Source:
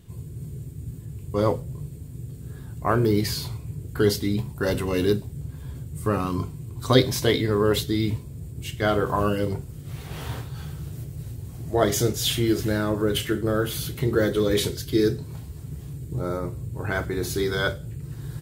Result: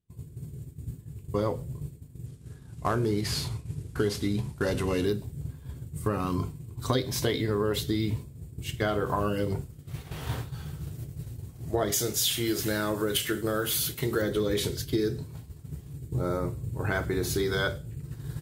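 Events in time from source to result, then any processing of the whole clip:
2.26–5.06 CVSD 64 kbps
11.92–14.22 tilt +2 dB/oct
whole clip: expander -29 dBFS; compressor 5:1, threshold -25 dBFS; gain +1 dB

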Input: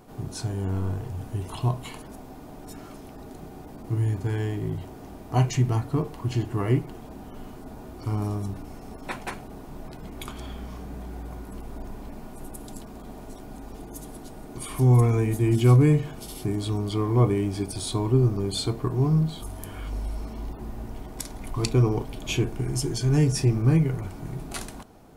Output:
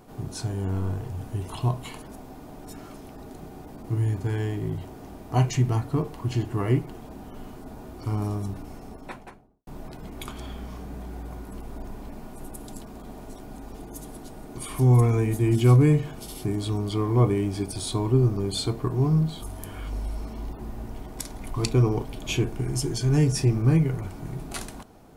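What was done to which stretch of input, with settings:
8.71–9.67 studio fade out

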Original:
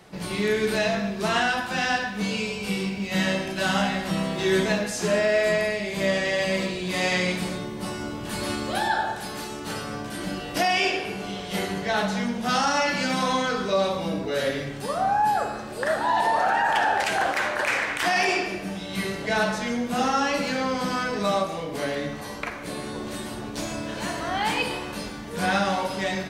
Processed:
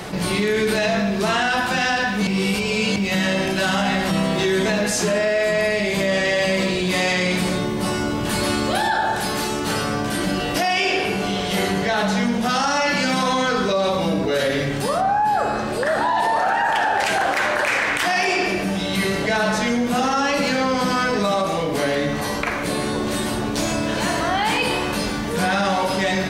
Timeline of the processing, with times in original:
2.27–2.96 reverse
15–16.18 LPF 4500 Hz -> 8300 Hz 6 dB/oct
whole clip: limiter -17.5 dBFS; fast leveller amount 50%; gain +4.5 dB

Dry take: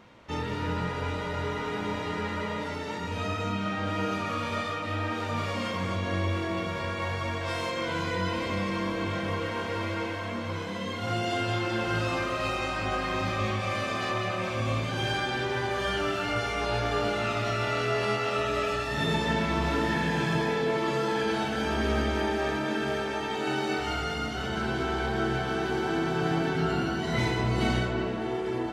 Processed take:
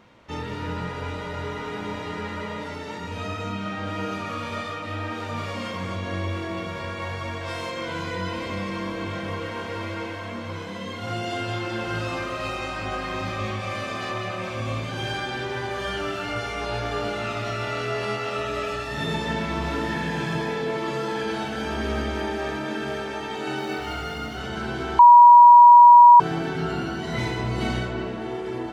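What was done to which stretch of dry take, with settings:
23.58–24.39 median filter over 5 samples
24.99–26.2 bleep 962 Hz -6 dBFS

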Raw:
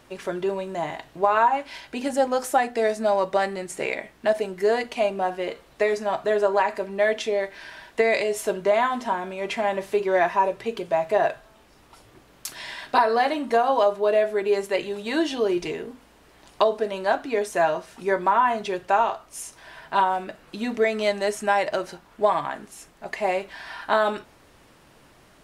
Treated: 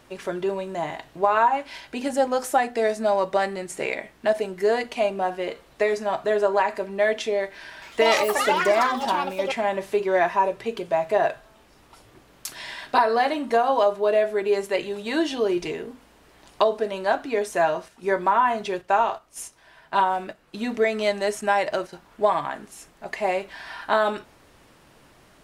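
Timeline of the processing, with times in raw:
7.72–10.12 echoes that change speed 0.1 s, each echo +6 st, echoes 3
17.88–21.93 gate -39 dBFS, range -8 dB

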